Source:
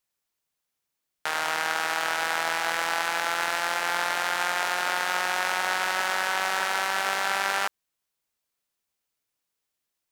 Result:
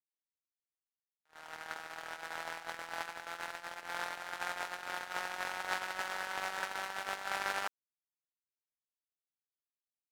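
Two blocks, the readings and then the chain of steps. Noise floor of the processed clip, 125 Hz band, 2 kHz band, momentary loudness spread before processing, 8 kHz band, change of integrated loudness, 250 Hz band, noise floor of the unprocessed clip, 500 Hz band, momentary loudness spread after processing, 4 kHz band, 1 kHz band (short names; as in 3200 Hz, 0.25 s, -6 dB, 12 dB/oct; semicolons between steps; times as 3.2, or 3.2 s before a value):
under -85 dBFS, -10.0 dB, -13.5 dB, 1 LU, -15.5 dB, -13.5 dB, -12.0 dB, -83 dBFS, -13.0 dB, 8 LU, -15.0 dB, -13.5 dB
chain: gate -22 dBFS, range -57 dB; gain +6.5 dB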